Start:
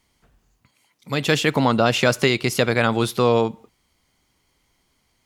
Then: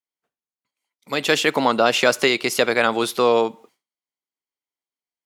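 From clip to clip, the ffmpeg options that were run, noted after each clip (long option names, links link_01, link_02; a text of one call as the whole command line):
ffmpeg -i in.wav -af "highpass=320,agate=range=-33dB:threshold=-50dB:ratio=3:detection=peak,volume=2dB" out.wav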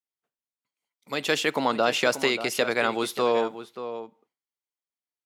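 ffmpeg -i in.wav -filter_complex "[0:a]asplit=2[link_01][link_02];[link_02]adelay=583.1,volume=-11dB,highshelf=frequency=4000:gain=-13.1[link_03];[link_01][link_03]amix=inputs=2:normalize=0,volume=-6dB" out.wav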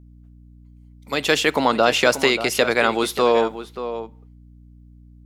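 ffmpeg -i in.wav -af "aeval=exprs='val(0)+0.00282*(sin(2*PI*60*n/s)+sin(2*PI*2*60*n/s)/2+sin(2*PI*3*60*n/s)/3+sin(2*PI*4*60*n/s)/4+sin(2*PI*5*60*n/s)/5)':channel_layout=same,volume=6dB" out.wav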